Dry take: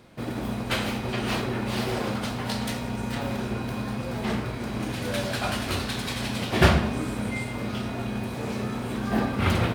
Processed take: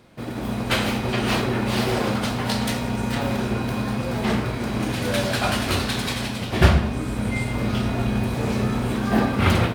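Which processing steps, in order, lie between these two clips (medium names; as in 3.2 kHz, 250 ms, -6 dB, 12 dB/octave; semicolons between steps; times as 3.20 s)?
6.40–8.93 s: bass shelf 83 Hz +11 dB; level rider gain up to 5.5 dB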